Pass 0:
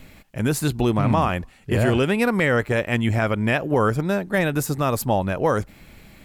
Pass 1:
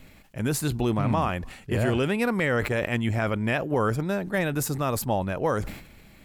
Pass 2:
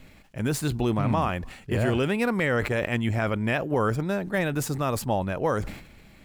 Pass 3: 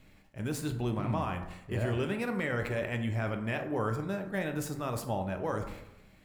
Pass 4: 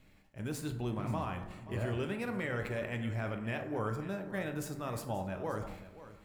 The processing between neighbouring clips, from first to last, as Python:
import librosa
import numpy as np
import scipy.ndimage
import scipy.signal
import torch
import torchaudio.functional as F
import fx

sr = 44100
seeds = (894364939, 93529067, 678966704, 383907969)

y1 = fx.sustainer(x, sr, db_per_s=82.0)
y1 = y1 * 10.0 ** (-5.0 / 20.0)
y2 = scipy.signal.medfilt(y1, 3)
y3 = fx.rev_plate(y2, sr, seeds[0], rt60_s=0.86, hf_ratio=0.45, predelay_ms=0, drr_db=5.0)
y3 = y3 * 10.0 ** (-9.0 / 20.0)
y4 = y3 + 10.0 ** (-15.5 / 20.0) * np.pad(y3, (int(530 * sr / 1000.0), 0))[:len(y3)]
y4 = y4 * 10.0 ** (-4.0 / 20.0)